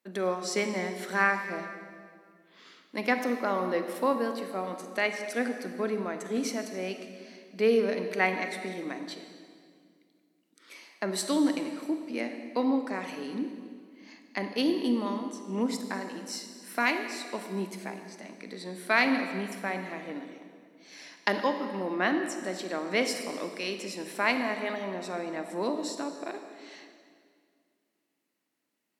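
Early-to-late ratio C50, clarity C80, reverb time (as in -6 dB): 7.5 dB, 8.0 dB, 2.1 s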